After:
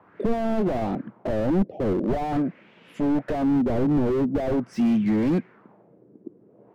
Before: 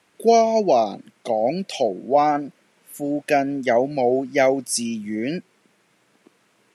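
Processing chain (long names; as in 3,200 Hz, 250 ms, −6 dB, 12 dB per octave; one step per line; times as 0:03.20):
high-pass filter 50 Hz 24 dB per octave
spectral tilt −2 dB per octave
downward compressor 2 to 1, threshold −21 dBFS, peak gain reduction 7 dB
auto-filter low-pass sine 0.44 Hz 350–3,100 Hz
slew-rate limiting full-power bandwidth 18 Hz
level +5 dB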